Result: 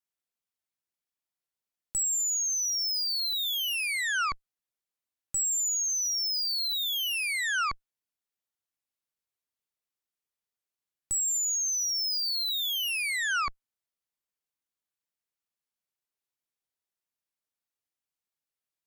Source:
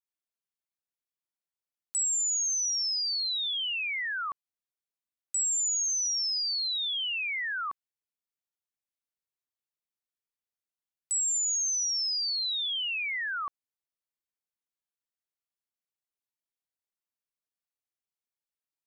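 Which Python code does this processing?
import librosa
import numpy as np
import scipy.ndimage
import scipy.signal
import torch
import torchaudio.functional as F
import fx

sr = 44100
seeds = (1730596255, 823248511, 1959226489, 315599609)

y = fx.cheby_harmonics(x, sr, harmonics=(2, 4, 5, 8), levels_db=(-29, -18, -32, -11), full_scale_db=-24.0)
y = fx.dynamic_eq(y, sr, hz=1400.0, q=2.5, threshold_db=-49.0, ratio=4.0, max_db=5)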